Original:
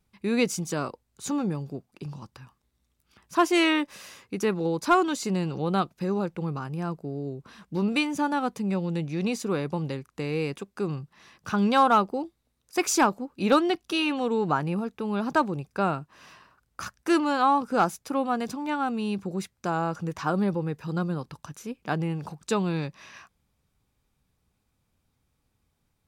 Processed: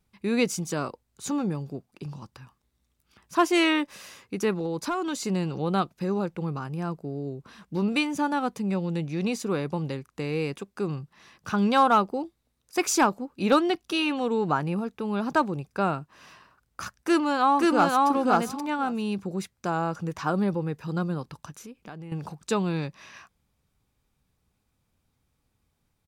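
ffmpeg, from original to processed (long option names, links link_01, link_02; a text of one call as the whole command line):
ffmpeg -i in.wav -filter_complex "[0:a]asettb=1/sr,asplit=3[link_01][link_02][link_03];[link_01]atrim=end=4.564[link_04];[link_02]atrim=start=4.56:end=5.27,asetpts=PTS-STARTPTS,afade=type=in:duration=0.004:curve=qsin,afade=type=out:start_time=0.706:duration=0.004:curve=qsin,acompressor=threshold=-25dB:ratio=5:attack=3.2:release=140:knee=1:detection=peak[link_05];[link_03]atrim=start=5.266[link_06];[link_04][link_05]acrossfade=duration=0.004:curve1=hsin:curve2=qsin[link_07];[link_07][link_06]acrossfade=duration=0.004:curve1=qsin:curve2=hsin,asplit=2[link_08][link_09];[link_09]afade=type=in:start_time=17.01:duration=0.01,afade=type=out:start_time=18.07:duration=0.01,aecho=0:1:530|1060:0.944061|0.0944061[link_10];[link_08][link_10]amix=inputs=2:normalize=0,asettb=1/sr,asplit=3[link_11][link_12][link_13];[link_11]atrim=end=21.504[link_14];[link_12]atrim=start=21.5:end=22.12,asetpts=PTS-STARTPTS,afade=type=in:duration=0.004:curve=qsin,afade=type=out:start_time=0.616:duration=0.004:curve=qsin,acompressor=threshold=-40dB:ratio=4:attack=3.2:release=140:knee=1:detection=peak[link_15];[link_13]atrim=start=22.116[link_16];[link_14][link_15]acrossfade=duration=0.004:curve1=hsin:curve2=qsin[link_17];[link_17][link_16]acrossfade=duration=0.004:curve1=qsin:curve2=hsin" out.wav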